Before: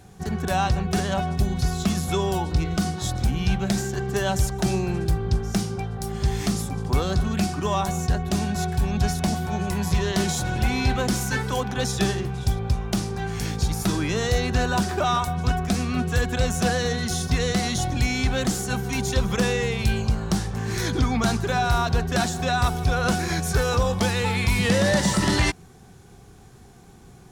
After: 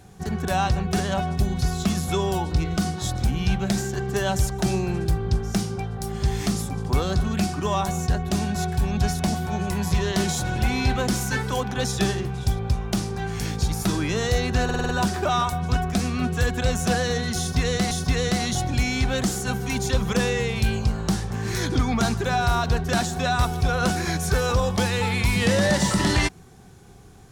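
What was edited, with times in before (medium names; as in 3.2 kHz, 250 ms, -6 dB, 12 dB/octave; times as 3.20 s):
14.64 s: stutter 0.05 s, 6 plays
17.14–17.66 s: loop, 2 plays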